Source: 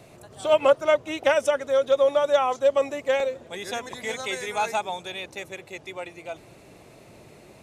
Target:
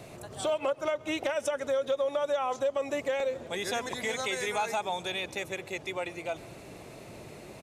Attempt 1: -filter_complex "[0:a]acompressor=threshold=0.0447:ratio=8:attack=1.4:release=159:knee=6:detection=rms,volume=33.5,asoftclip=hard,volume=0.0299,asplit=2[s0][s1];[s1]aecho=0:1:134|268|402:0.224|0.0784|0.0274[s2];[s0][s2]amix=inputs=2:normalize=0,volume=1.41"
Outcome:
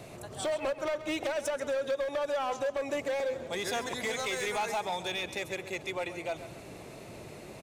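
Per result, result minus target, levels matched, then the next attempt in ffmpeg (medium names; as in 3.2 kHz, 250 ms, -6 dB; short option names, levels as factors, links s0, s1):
overload inside the chain: distortion +26 dB; echo-to-direct +10 dB
-filter_complex "[0:a]acompressor=threshold=0.0447:ratio=8:attack=1.4:release=159:knee=6:detection=rms,volume=15,asoftclip=hard,volume=0.0668,asplit=2[s0][s1];[s1]aecho=0:1:134|268|402:0.224|0.0784|0.0274[s2];[s0][s2]amix=inputs=2:normalize=0,volume=1.41"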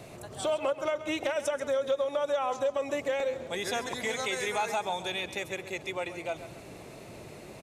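echo-to-direct +10 dB
-filter_complex "[0:a]acompressor=threshold=0.0447:ratio=8:attack=1.4:release=159:knee=6:detection=rms,volume=15,asoftclip=hard,volume=0.0668,asplit=2[s0][s1];[s1]aecho=0:1:134|268:0.0708|0.0248[s2];[s0][s2]amix=inputs=2:normalize=0,volume=1.41"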